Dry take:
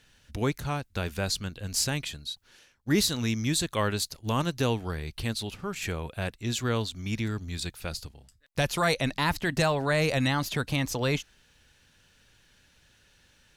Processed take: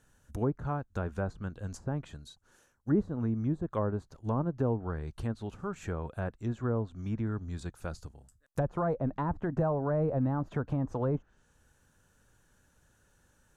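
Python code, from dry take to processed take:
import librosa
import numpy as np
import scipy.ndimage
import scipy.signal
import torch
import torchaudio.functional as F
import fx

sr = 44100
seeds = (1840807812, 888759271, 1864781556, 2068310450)

y = fx.env_lowpass_down(x, sr, base_hz=790.0, full_db=-23.5)
y = fx.band_shelf(y, sr, hz=3200.0, db=-14.0, octaves=1.7)
y = F.gain(torch.from_numpy(y), -2.0).numpy()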